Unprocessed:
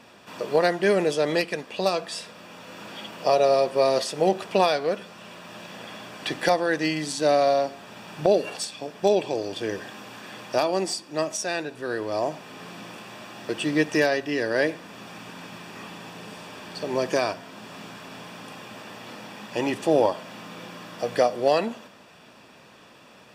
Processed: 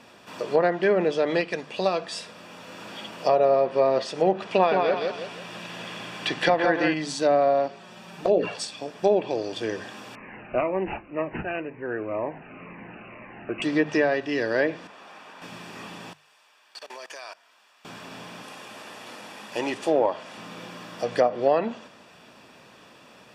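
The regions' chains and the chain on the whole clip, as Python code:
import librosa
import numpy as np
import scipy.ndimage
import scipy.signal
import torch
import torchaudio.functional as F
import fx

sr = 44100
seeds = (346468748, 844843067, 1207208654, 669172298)

y = fx.chain(x, sr, fx.peak_eq(hz=2600.0, db=3.5, octaves=1.3),
    fx.echo_feedback(ms=166, feedback_pct=39, wet_db=-4.0), at=(4.46, 6.94))
y = fx.chain(y, sr, fx.env_flanger(rest_ms=6.4, full_db=-14.5),
    fx.doubler(ms=17.0, db=-12.0),
    fx.sustainer(db_per_s=100.0), at=(7.68, 8.57))
y = fx.chain(y, sr, fx.resample_bad(factor=8, down='none', up='filtered'),
    fx.notch_cascade(direction='falling', hz=2.0), at=(10.15, 13.62))
y = fx.chain(y, sr, fx.highpass(hz=770.0, slope=12),
    fx.tilt_eq(slope=-3.5), at=(14.87, 15.42))
y = fx.chain(y, sr, fx.highpass(hz=950.0, slope=12),
    fx.level_steps(step_db=20), at=(16.13, 17.85))
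y = fx.chain(y, sr, fx.cvsd(bps=64000),
    fx.highpass(hz=78.0, slope=12),
    fx.peak_eq(hz=130.0, db=-7.5, octaves=2.2), at=(18.42, 20.38))
y = fx.hum_notches(y, sr, base_hz=50, count=4)
y = fx.env_lowpass_down(y, sr, base_hz=1800.0, full_db=-16.0)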